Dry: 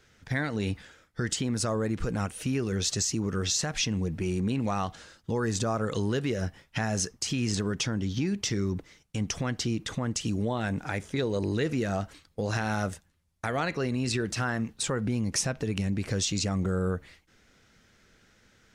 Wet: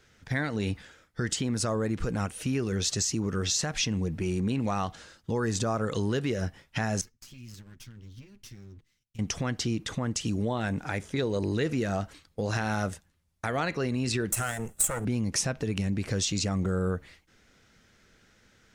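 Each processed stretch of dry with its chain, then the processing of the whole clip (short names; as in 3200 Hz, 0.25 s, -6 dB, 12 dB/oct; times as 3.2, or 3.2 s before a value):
7.01–9.19 minimum comb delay 8.4 ms + passive tone stack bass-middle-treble 6-0-2 + decimation joined by straight lines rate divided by 2×
14.32–15.05 minimum comb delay 1.5 ms + resonant high shelf 6200 Hz +11 dB, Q 3 + compressor 2.5:1, threshold -22 dBFS
whole clip: dry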